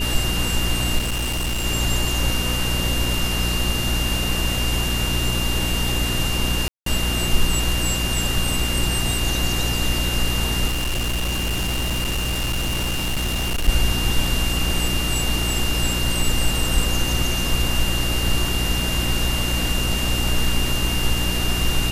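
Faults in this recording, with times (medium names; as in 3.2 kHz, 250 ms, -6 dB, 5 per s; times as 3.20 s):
crackle 17 per s -27 dBFS
hum 60 Hz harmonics 6 -25 dBFS
whine 2.8 kHz -26 dBFS
0.98–1.66 s: clipped -20 dBFS
6.68–6.86 s: dropout 183 ms
10.67–13.69 s: clipped -19 dBFS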